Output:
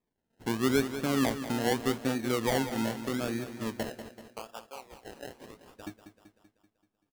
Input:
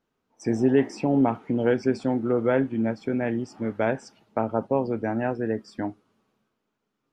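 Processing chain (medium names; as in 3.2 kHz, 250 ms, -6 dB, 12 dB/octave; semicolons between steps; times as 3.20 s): 3.83–5.87 s: high-pass 1.3 kHz 12 dB/octave; decimation with a swept rate 30×, swing 60% 0.82 Hz; feedback delay 192 ms, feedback 55%, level -11 dB; trim -6.5 dB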